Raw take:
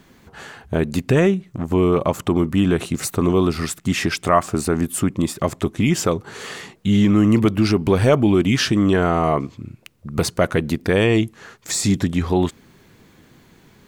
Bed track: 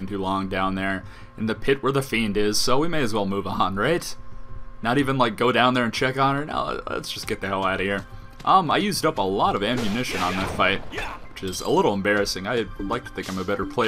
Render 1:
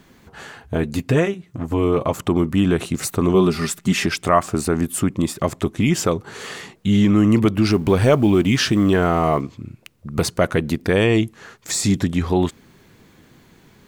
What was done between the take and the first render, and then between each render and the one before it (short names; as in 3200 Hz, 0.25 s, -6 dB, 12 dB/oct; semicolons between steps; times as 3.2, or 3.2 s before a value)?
0.6–2.14 notch comb 190 Hz; 3.34–4.06 comb 5 ms; 7.67–9.41 G.711 law mismatch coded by mu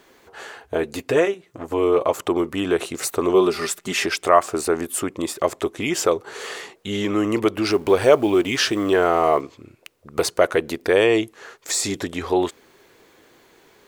resonant low shelf 280 Hz -12.5 dB, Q 1.5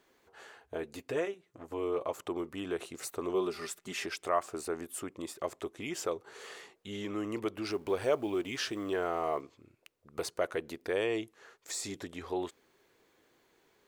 gain -15 dB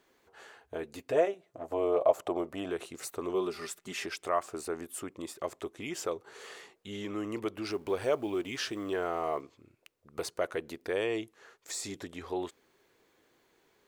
1.12–2.7 bell 650 Hz +15 dB 0.64 oct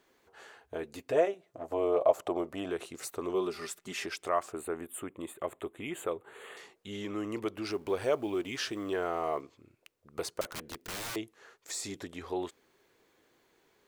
4.52–6.57 Butterworth band-stop 5300 Hz, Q 1.2; 10.41–11.16 wrapped overs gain 34 dB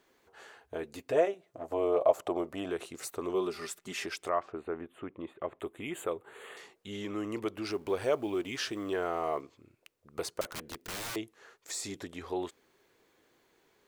4.3–5.6 air absorption 270 m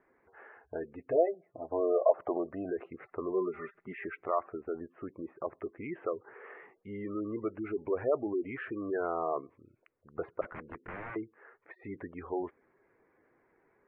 spectral gate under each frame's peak -20 dB strong; steep low-pass 2200 Hz 48 dB/oct